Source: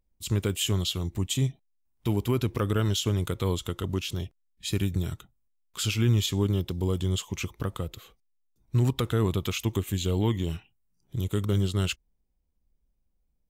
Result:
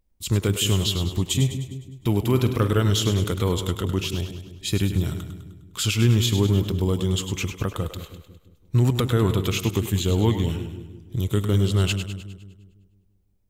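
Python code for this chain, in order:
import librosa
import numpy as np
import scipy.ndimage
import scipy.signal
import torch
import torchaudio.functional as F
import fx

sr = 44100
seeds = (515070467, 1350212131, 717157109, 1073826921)

p1 = fx.doubler(x, sr, ms=47.0, db=-11.0, at=(2.28, 2.77), fade=0.02)
p2 = p1 + fx.echo_split(p1, sr, split_hz=410.0, low_ms=168, high_ms=102, feedback_pct=52, wet_db=-9.0, dry=0)
y = F.gain(torch.from_numpy(p2), 4.5).numpy()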